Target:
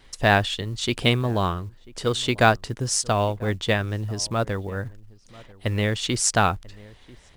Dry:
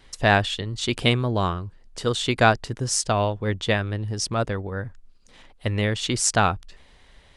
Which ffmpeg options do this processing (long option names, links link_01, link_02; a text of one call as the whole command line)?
ffmpeg -i in.wav -filter_complex "[0:a]asplit=2[link_01][link_02];[link_02]adelay=991.3,volume=-22dB,highshelf=frequency=4000:gain=-22.3[link_03];[link_01][link_03]amix=inputs=2:normalize=0,acrusher=bits=8:mode=log:mix=0:aa=0.000001" out.wav